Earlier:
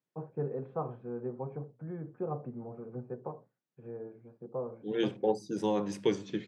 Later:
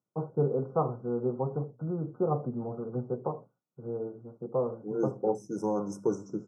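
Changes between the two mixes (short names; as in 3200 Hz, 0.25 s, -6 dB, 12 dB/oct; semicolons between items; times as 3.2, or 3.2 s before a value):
first voice +7.5 dB; master: add brick-wall FIR band-stop 1500–5100 Hz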